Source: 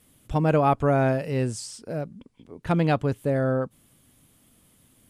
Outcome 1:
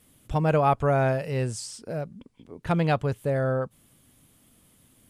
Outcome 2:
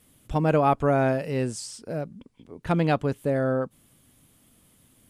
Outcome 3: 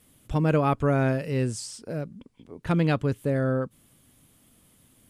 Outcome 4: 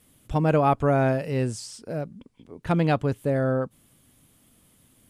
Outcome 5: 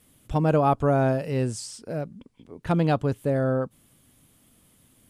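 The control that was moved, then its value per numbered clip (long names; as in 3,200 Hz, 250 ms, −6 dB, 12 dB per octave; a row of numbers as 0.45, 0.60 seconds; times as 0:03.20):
dynamic equaliser, frequency: 280, 100, 750, 8,500, 2,100 Hertz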